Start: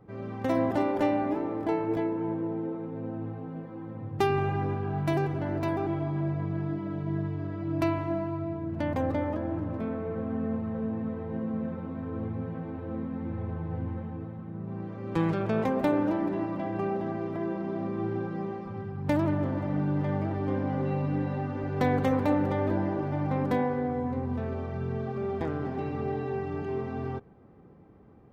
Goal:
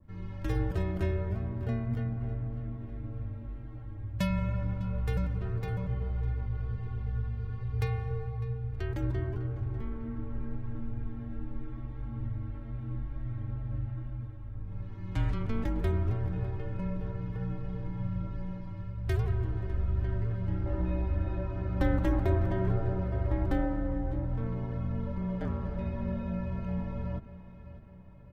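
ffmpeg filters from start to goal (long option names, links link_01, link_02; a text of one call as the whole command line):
ffmpeg -i in.wav -filter_complex "[0:a]asetnsamples=nb_out_samples=441:pad=0,asendcmd='20.66 equalizer g -3',equalizer=frequency=890:width=0.88:gain=-10.5,afreqshift=-210,asplit=2[link_01][link_02];[link_02]adelay=602,lowpass=frequency=4400:poles=1,volume=-15.5dB,asplit=2[link_03][link_04];[link_04]adelay=602,lowpass=frequency=4400:poles=1,volume=0.54,asplit=2[link_05][link_06];[link_06]adelay=602,lowpass=frequency=4400:poles=1,volume=0.54,asplit=2[link_07][link_08];[link_08]adelay=602,lowpass=frequency=4400:poles=1,volume=0.54,asplit=2[link_09][link_10];[link_10]adelay=602,lowpass=frequency=4400:poles=1,volume=0.54[link_11];[link_01][link_03][link_05][link_07][link_09][link_11]amix=inputs=6:normalize=0,adynamicequalizer=threshold=0.00224:dfrequency=1800:dqfactor=0.7:tfrequency=1800:tqfactor=0.7:attack=5:release=100:ratio=0.375:range=2.5:mode=cutabove:tftype=highshelf" out.wav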